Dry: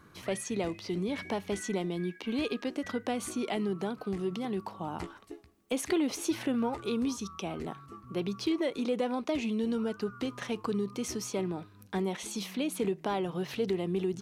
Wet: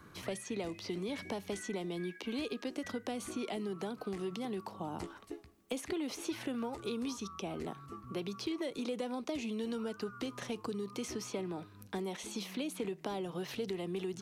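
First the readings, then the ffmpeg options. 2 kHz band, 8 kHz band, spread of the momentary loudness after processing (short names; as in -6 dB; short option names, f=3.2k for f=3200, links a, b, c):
-5.0 dB, -6.0 dB, 4 LU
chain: -filter_complex "[0:a]acrossover=split=260|670|4100[a][b][c][d];[a]acompressor=threshold=-47dB:ratio=4[e];[b]acompressor=threshold=-41dB:ratio=4[f];[c]acompressor=threshold=-48dB:ratio=4[g];[d]acompressor=threshold=-49dB:ratio=4[h];[e][f][g][h]amix=inputs=4:normalize=0,volume=1dB"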